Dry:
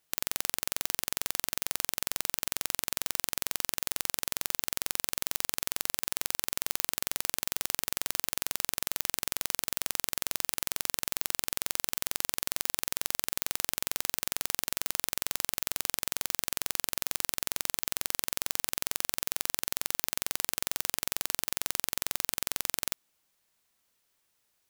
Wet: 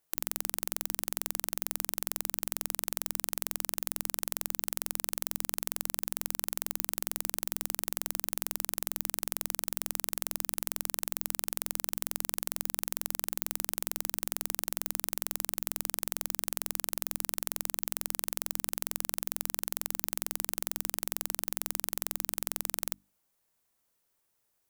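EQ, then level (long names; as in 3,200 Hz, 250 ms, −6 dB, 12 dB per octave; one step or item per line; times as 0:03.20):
parametric band 3,300 Hz −7.5 dB 2.4 octaves
mains-hum notches 50/100/150/200/250/300 Hz
0.0 dB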